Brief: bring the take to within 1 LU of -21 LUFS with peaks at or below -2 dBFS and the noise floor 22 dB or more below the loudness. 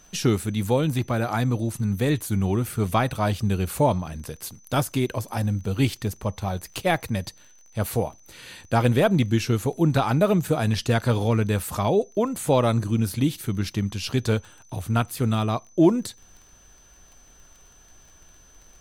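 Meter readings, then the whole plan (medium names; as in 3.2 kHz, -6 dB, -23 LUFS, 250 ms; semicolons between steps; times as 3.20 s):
tick rate 27 per s; steady tone 6.1 kHz; tone level -54 dBFS; loudness -24.0 LUFS; peak level -7.5 dBFS; loudness target -21.0 LUFS
-> de-click; band-stop 6.1 kHz, Q 30; trim +3 dB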